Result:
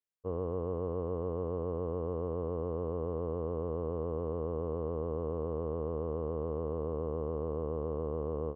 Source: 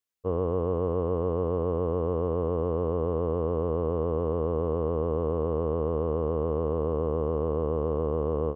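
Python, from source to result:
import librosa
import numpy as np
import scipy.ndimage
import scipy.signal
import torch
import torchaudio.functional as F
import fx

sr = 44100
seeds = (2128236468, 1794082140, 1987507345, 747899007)

y = fx.high_shelf(x, sr, hz=2600.0, db=-8.5)
y = F.gain(torch.from_numpy(y), -7.5).numpy()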